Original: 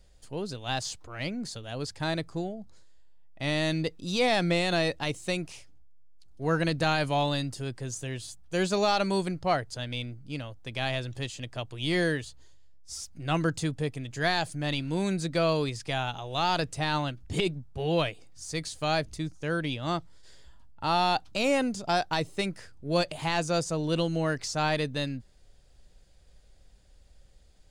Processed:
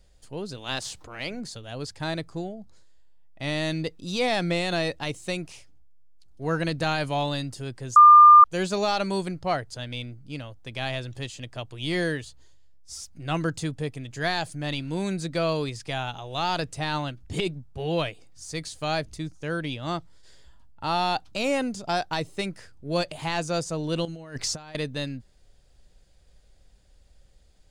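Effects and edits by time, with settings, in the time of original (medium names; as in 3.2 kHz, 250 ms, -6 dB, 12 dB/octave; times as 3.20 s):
0.56–1.39 s: spectral peaks clipped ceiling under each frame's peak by 12 dB
7.96–8.44 s: bleep 1.2 kHz -7.5 dBFS
24.05–24.75 s: compressor with a negative ratio -34 dBFS, ratio -0.5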